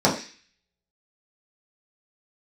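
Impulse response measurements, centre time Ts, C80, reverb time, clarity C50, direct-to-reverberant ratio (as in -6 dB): 24 ms, 12.5 dB, 0.35 s, 8.5 dB, -6.5 dB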